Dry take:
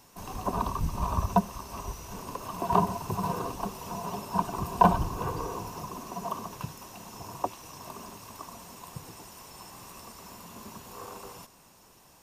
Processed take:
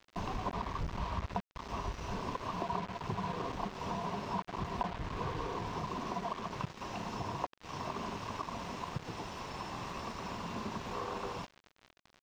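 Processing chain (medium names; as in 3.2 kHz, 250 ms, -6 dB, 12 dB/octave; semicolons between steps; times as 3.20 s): compression 10:1, threshold -42 dBFS, peak gain reduction 27.5 dB; bit crusher 8-bit; distance through air 190 m; trim +8.5 dB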